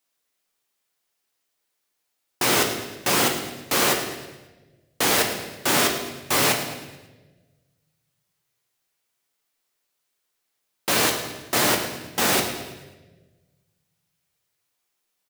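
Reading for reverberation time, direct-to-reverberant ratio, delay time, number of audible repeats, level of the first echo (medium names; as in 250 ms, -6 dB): 1.2 s, 2.0 dB, 108 ms, 4, -13.0 dB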